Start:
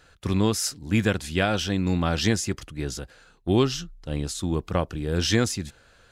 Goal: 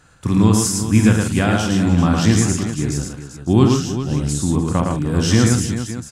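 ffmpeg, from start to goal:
-af "equalizer=f=125:t=o:w=1:g=9,equalizer=f=250:t=o:w=1:g=7,equalizer=f=500:t=o:w=1:g=-3,equalizer=f=1000:t=o:w=1:g=6,equalizer=f=4000:t=o:w=1:g=-4,equalizer=f=8000:t=o:w=1:g=9,aecho=1:1:47|111|153|301|391|559:0.398|0.708|0.316|0.15|0.299|0.2"

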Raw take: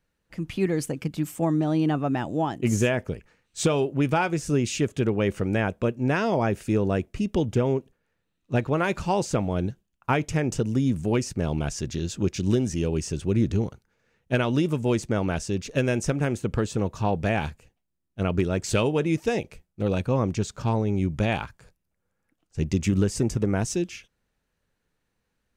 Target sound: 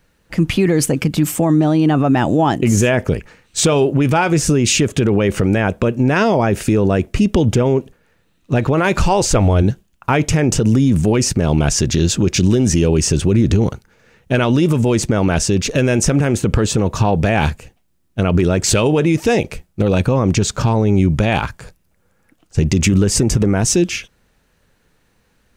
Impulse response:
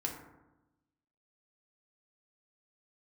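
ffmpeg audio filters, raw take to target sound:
-filter_complex "[0:a]asplit=3[s0][s1][s2];[s0]afade=t=out:st=9.01:d=0.02[s3];[s1]asubboost=boost=9:cutoff=53,afade=t=in:st=9.01:d=0.02,afade=t=out:st=9.62:d=0.02[s4];[s2]afade=t=in:st=9.62:d=0.02[s5];[s3][s4][s5]amix=inputs=3:normalize=0,alimiter=level_in=11.9:limit=0.891:release=50:level=0:latency=1,volume=0.596"

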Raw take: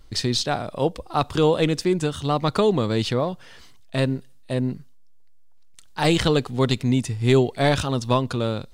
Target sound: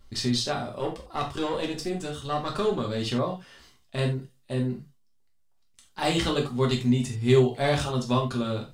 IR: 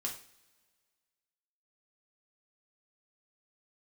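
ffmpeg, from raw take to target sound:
-filter_complex "[0:a]asettb=1/sr,asplit=3[s0][s1][s2];[s0]atrim=end=0.794[s3];[s1]atrim=start=0.79:end=3.04,asetpts=PTS-STARTPTS,afade=t=in:d=0.004:c=qsin,afade=t=out:st=2.246:d=0.004:c=qsin,aeval=exprs='(tanh(5.01*val(0)+0.55)-tanh(0.55))/5.01':c=same[s4];[s2]atrim=start=3.036[s5];[s3][s4]acrossfade=d=0.004:c1=hsin:c2=qsin[s6];[s6][s5]acrossfade=d=0.004:c1=qsin:c2=hsin[s7];[1:a]atrim=start_sample=2205,atrim=end_sample=4410[s8];[s7][s8]afir=irnorm=-1:irlink=0,volume=0.596"

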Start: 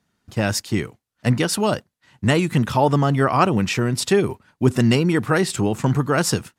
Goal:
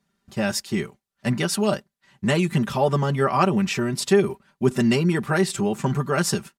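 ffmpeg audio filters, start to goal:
-af "aecho=1:1:5.1:0.72,volume=0.596"

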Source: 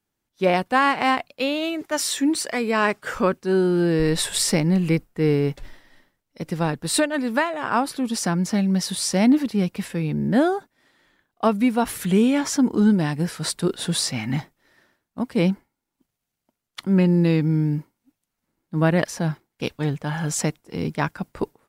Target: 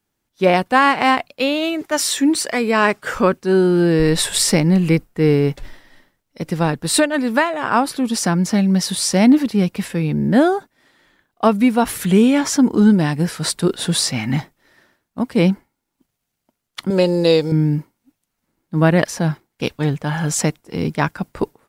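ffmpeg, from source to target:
-filter_complex "[0:a]asettb=1/sr,asplit=3[s0][s1][s2];[s0]atrim=end=16.904[s3];[s1]atrim=start=16.9:end=17.52,asetpts=PTS-STARTPTS,afade=t=in:d=0.004:c=qsin,afade=t=out:st=0.616:d=0.004:c=qsin,equalizer=f=125:t=o:w=1:g=-9,equalizer=f=250:t=o:w=1:g=-12,equalizer=f=500:t=o:w=1:g=12,equalizer=f=2000:t=o:w=1:g=-6,equalizer=f=4000:t=o:w=1:g=11,equalizer=f=8000:t=o:w=1:g=9[s4];[s2]atrim=start=17.516[s5];[s3][s4]acrossfade=d=0.004:c1=hsin:c2=qsin[s6];[s6][s5]acrossfade=d=0.004:c1=qsin:c2=hsin,volume=1.78"

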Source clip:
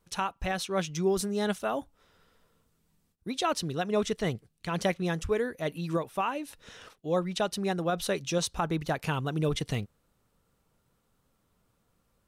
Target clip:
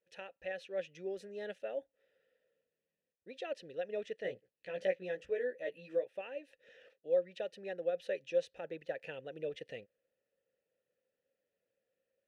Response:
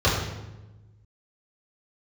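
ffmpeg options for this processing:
-filter_complex "[0:a]asplit=3[s0][s1][s2];[s0]bandpass=f=530:t=q:w=8,volume=1[s3];[s1]bandpass=f=1840:t=q:w=8,volume=0.501[s4];[s2]bandpass=f=2480:t=q:w=8,volume=0.355[s5];[s3][s4][s5]amix=inputs=3:normalize=0,asettb=1/sr,asplit=3[s6][s7][s8];[s6]atrim=end=4.234[s9];[s7]atrim=start=4.23:end=6.07,asetpts=PTS-STARTPTS,afade=t=in:d=0.004:c=qsin,afade=t=out:st=1.836:d=0.004:c=qsin,asplit=2[s10][s11];[s11]adelay=16,volume=0.708[s12];[s10][s12]amix=inputs=2:normalize=0,atrim=end_sample=81144[s13];[s8]atrim=start=6.066[s14];[s9][s13]acrossfade=d=0.004:c1=hsin:c2=qsin[s15];[s15][s14]acrossfade=d=0.004:c1=qsin:c2=hsin"

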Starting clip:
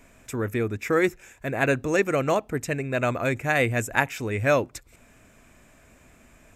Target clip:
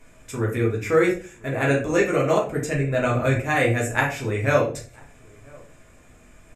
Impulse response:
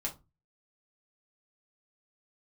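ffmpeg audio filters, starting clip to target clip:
-filter_complex "[0:a]asettb=1/sr,asplit=3[s0][s1][s2];[s0]atrim=end=2.754[s3];[s1]atrim=start=2.75:end=3.4,asetpts=PTS-STARTPTS,afade=t=in:d=0.004:c=qsin,afade=t=out:st=0.646:d=0.004:c=qsin,lowshelf=f=100:g=12[s4];[s2]atrim=start=3.396[s5];[s3][s4]acrossfade=d=0.004:c1=hsin:c2=qsin[s6];[s6][s5]acrossfade=d=0.004:c1=qsin:c2=hsin,asplit=2[s7][s8];[s8]adelay=991.3,volume=0.0501,highshelf=f=4000:g=-22.3[s9];[s7][s9]amix=inputs=2:normalize=0[s10];[1:a]atrim=start_sample=2205,asetrate=24255,aresample=44100[s11];[s10][s11]afir=irnorm=-1:irlink=0,volume=0.668"

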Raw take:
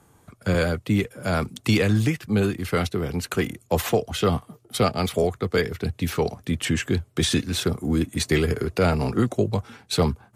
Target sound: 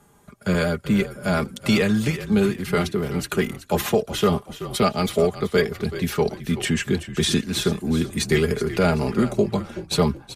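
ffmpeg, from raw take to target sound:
-filter_complex "[0:a]aecho=1:1:4.9:0.6,asplit=2[s0][s1];[s1]asplit=3[s2][s3][s4];[s2]adelay=378,afreqshift=-37,volume=0.224[s5];[s3]adelay=756,afreqshift=-74,volume=0.0741[s6];[s4]adelay=1134,afreqshift=-111,volume=0.0243[s7];[s5][s6][s7]amix=inputs=3:normalize=0[s8];[s0][s8]amix=inputs=2:normalize=0"

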